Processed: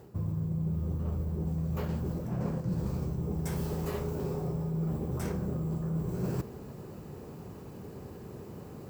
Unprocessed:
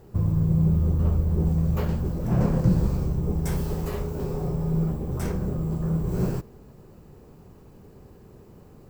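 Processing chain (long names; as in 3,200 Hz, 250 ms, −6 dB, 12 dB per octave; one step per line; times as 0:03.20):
high-pass filter 81 Hz
reversed playback
downward compressor 6 to 1, threshold −36 dBFS, peak gain reduction 19 dB
reversed playback
level +5.5 dB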